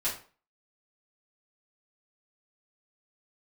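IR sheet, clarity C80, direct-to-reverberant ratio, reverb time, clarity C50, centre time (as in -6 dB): 13.0 dB, -9.5 dB, 0.40 s, 7.5 dB, 26 ms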